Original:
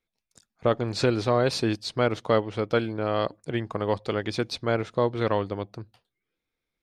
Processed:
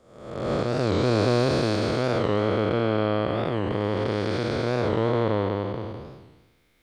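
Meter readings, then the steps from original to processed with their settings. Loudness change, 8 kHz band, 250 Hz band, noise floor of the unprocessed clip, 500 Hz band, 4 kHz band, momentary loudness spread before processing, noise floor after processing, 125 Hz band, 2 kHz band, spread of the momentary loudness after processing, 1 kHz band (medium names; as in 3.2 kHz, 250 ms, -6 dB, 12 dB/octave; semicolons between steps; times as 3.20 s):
+2.0 dB, no reading, +3.5 dB, -85 dBFS, +2.0 dB, 0.0 dB, 7 LU, -61 dBFS, +4.5 dB, +1.0 dB, 10 LU, +1.0 dB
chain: spectral blur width 620 ms; recorder AGC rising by 13 dB/s; warped record 45 rpm, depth 160 cents; trim +6.5 dB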